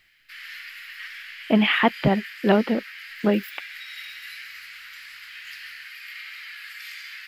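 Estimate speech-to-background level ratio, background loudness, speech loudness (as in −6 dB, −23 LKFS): 15.5 dB, −37.5 LKFS, −22.0 LKFS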